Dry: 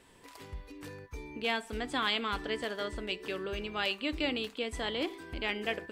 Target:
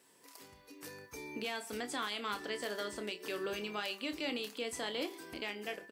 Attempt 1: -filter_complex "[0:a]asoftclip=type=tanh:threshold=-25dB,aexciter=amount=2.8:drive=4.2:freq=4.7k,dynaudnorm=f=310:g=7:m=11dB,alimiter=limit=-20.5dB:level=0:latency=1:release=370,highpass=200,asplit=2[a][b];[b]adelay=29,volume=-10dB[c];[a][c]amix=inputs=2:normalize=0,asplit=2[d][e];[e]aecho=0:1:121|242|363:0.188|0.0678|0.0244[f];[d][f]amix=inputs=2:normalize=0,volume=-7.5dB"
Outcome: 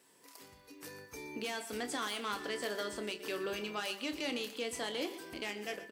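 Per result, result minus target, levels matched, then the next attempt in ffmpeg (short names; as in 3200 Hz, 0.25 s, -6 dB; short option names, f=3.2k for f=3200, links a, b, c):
soft clip: distortion +14 dB; echo-to-direct +12 dB
-filter_complex "[0:a]asoftclip=type=tanh:threshold=-16dB,aexciter=amount=2.8:drive=4.2:freq=4.7k,dynaudnorm=f=310:g=7:m=11dB,alimiter=limit=-20.5dB:level=0:latency=1:release=370,highpass=200,asplit=2[a][b];[b]adelay=29,volume=-10dB[c];[a][c]amix=inputs=2:normalize=0,asplit=2[d][e];[e]aecho=0:1:121|242|363:0.188|0.0678|0.0244[f];[d][f]amix=inputs=2:normalize=0,volume=-7.5dB"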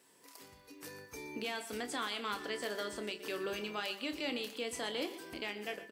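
echo-to-direct +12 dB
-filter_complex "[0:a]asoftclip=type=tanh:threshold=-16dB,aexciter=amount=2.8:drive=4.2:freq=4.7k,dynaudnorm=f=310:g=7:m=11dB,alimiter=limit=-20.5dB:level=0:latency=1:release=370,highpass=200,asplit=2[a][b];[b]adelay=29,volume=-10dB[c];[a][c]amix=inputs=2:normalize=0,asplit=2[d][e];[e]aecho=0:1:121|242:0.0473|0.017[f];[d][f]amix=inputs=2:normalize=0,volume=-7.5dB"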